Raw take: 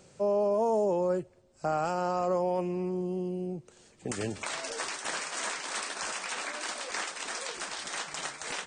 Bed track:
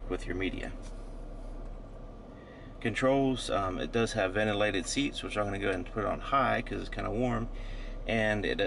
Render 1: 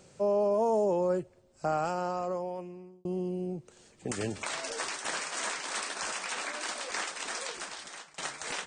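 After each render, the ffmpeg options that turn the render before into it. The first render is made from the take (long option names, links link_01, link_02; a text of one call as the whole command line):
ffmpeg -i in.wav -filter_complex "[0:a]asplit=3[link_01][link_02][link_03];[link_01]atrim=end=3.05,asetpts=PTS-STARTPTS,afade=type=out:start_time=1.72:duration=1.33[link_04];[link_02]atrim=start=3.05:end=8.18,asetpts=PTS-STARTPTS,afade=type=in:duration=0.004:curve=hsin,afade=type=out:start_time=4.38:duration=0.75:silence=0.0794328[link_05];[link_03]atrim=start=8.18,asetpts=PTS-STARTPTS,afade=type=in:duration=0.004:curve=hsin:silence=0.0794328[link_06];[link_04][link_05][link_06]concat=n=3:v=0:a=1" out.wav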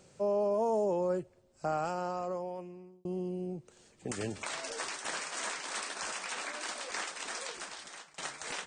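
ffmpeg -i in.wav -af "volume=-3dB" out.wav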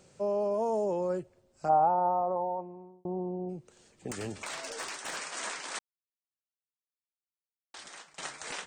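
ffmpeg -i in.wav -filter_complex "[0:a]asplit=3[link_01][link_02][link_03];[link_01]afade=type=out:start_time=1.68:duration=0.02[link_04];[link_02]lowpass=frequency=850:width_type=q:width=5.5,afade=type=in:start_time=1.68:duration=0.02,afade=type=out:start_time=3.48:duration=0.02[link_05];[link_03]afade=type=in:start_time=3.48:duration=0.02[link_06];[link_04][link_05][link_06]amix=inputs=3:normalize=0,asettb=1/sr,asplit=3[link_07][link_08][link_09];[link_07]atrim=end=4.094[link_10];[link_08]atrim=start=4.09:end=5.17,asetpts=PTS-STARTPTS,afade=type=in:duration=0.004:curve=qsin,afade=type=out:start_time=1.076:duration=0.004:curve=qsin,asoftclip=type=hard:threshold=-31.5dB[link_11];[link_09]atrim=start=5.166[link_12];[link_10][link_11]acrossfade=duration=0.004:curve1=hsin:curve2=qsin[link_13];[link_13][link_12]acrossfade=duration=0.004:curve1=qsin:curve2=hsin,asplit=3[link_14][link_15][link_16];[link_14]atrim=end=5.79,asetpts=PTS-STARTPTS,afade=type=out:start_time=5.786:duration=0.004:curve=hsin[link_17];[link_15]atrim=start=5.79:end=7.74,asetpts=PTS-STARTPTS,volume=0[link_18];[link_16]atrim=start=7.74,asetpts=PTS-STARTPTS,afade=type=in:duration=0.004:curve=hsin[link_19];[link_17][link_18][link_19]concat=n=3:v=0:a=1" out.wav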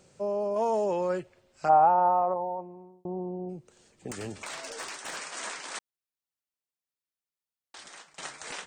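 ffmpeg -i in.wav -filter_complex "[0:a]asettb=1/sr,asplit=3[link_01][link_02][link_03];[link_01]atrim=end=0.564[link_04];[link_02]atrim=start=0.56:end=2.34,asetpts=PTS-STARTPTS,afade=type=in:duration=0.004:curve=qsin,afade=type=out:start_time=1.776:duration=0.004:curve=qsin,equalizer=frequency=2400:width_type=o:width=2.5:gain=12[link_05];[link_03]atrim=start=2.336[link_06];[link_04][link_05]acrossfade=duration=0.004:curve1=hsin:curve2=qsin[link_07];[link_07][link_06]acrossfade=duration=0.004:curve1=qsin:curve2=hsin" out.wav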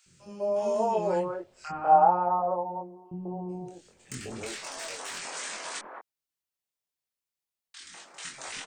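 ffmpeg -i in.wav -filter_complex "[0:a]asplit=2[link_01][link_02];[link_02]adelay=23,volume=-2.5dB[link_03];[link_01][link_03]amix=inputs=2:normalize=0,acrossover=split=300|1400[link_04][link_05][link_06];[link_04]adelay=60[link_07];[link_05]adelay=200[link_08];[link_07][link_08][link_06]amix=inputs=3:normalize=0" out.wav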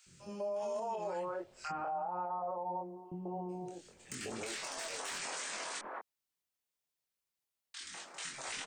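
ffmpeg -i in.wav -filter_complex "[0:a]acrossover=split=180|540[link_01][link_02][link_03];[link_01]acompressor=threshold=-57dB:ratio=4[link_04];[link_02]acompressor=threshold=-43dB:ratio=4[link_05];[link_03]acompressor=threshold=-29dB:ratio=4[link_06];[link_04][link_05][link_06]amix=inputs=3:normalize=0,alimiter=level_in=7dB:limit=-24dB:level=0:latency=1:release=90,volume=-7dB" out.wav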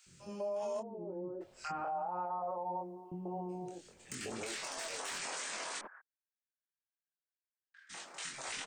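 ffmpeg -i in.wav -filter_complex "[0:a]asplit=3[link_01][link_02][link_03];[link_01]afade=type=out:start_time=0.81:duration=0.02[link_04];[link_02]lowpass=frequency=300:width_type=q:width=3.7,afade=type=in:start_time=0.81:duration=0.02,afade=type=out:start_time=1.4:duration=0.02[link_05];[link_03]afade=type=in:start_time=1.4:duration=0.02[link_06];[link_04][link_05][link_06]amix=inputs=3:normalize=0,asplit=3[link_07][link_08][link_09];[link_07]afade=type=out:start_time=5.86:duration=0.02[link_10];[link_08]bandpass=frequency=1600:width_type=q:width=11,afade=type=in:start_time=5.86:duration=0.02,afade=type=out:start_time=7.89:duration=0.02[link_11];[link_09]afade=type=in:start_time=7.89:duration=0.02[link_12];[link_10][link_11][link_12]amix=inputs=3:normalize=0" out.wav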